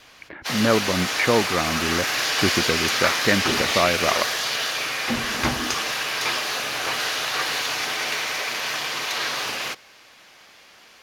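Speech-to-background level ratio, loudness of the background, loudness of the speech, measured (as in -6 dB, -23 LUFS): -1.5 dB, -23.0 LUFS, -24.5 LUFS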